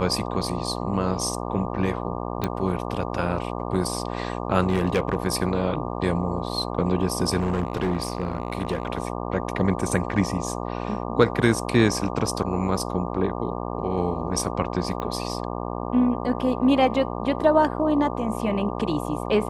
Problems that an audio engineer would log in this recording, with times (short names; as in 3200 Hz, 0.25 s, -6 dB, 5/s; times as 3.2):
buzz 60 Hz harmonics 20 -30 dBFS
2.44 pop -11 dBFS
4.69–5.16 clipped -15.5 dBFS
7.38–8.87 clipped -19 dBFS
15 pop -17 dBFS